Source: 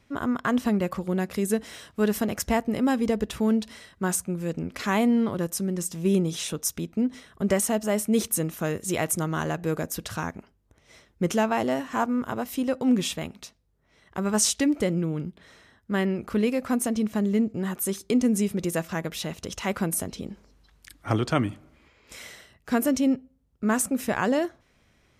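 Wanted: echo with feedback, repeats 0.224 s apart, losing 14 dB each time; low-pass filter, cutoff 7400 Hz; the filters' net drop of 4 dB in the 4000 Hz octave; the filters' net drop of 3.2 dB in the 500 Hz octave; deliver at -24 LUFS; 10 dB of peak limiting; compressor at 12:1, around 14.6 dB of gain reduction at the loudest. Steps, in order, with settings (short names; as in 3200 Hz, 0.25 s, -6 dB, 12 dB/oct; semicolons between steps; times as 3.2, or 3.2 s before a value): LPF 7400 Hz; bell 500 Hz -4 dB; bell 4000 Hz -5 dB; compressor 12:1, threshold -34 dBFS; limiter -29.5 dBFS; feedback echo 0.224 s, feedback 20%, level -14 dB; gain +16.5 dB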